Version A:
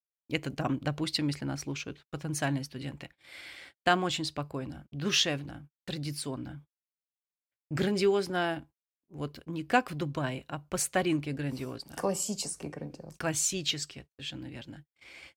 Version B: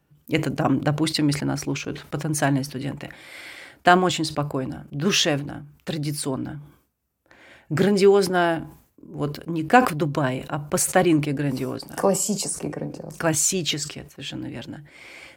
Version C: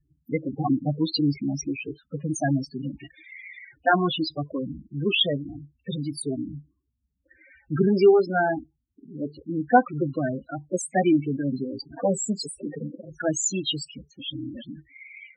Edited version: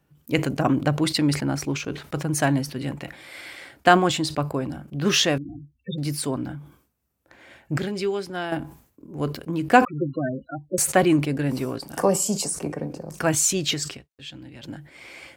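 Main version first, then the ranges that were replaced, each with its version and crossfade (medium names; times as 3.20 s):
B
5.38–5.98 s: from C
7.78–8.52 s: from A
9.85–10.78 s: from C
13.97–14.63 s: from A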